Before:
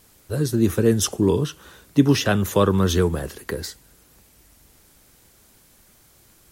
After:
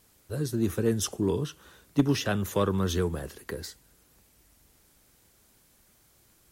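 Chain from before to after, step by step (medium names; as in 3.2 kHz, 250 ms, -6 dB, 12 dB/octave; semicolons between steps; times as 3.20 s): Chebyshev shaper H 3 -15 dB, 5 -24 dB, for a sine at -3 dBFS; trim -5.5 dB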